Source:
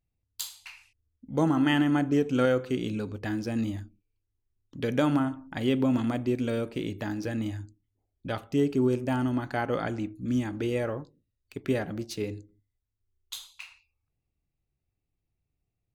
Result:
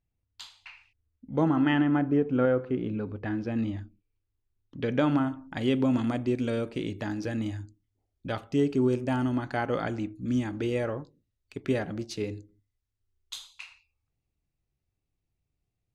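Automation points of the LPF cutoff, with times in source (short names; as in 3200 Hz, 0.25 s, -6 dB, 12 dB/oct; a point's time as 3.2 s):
1.52 s 3100 Hz
2.27 s 1500 Hz
2.81 s 1500 Hz
3.82 s 3600 Hz
4.98 s 3600 Hz
5.48 s 8400 Hz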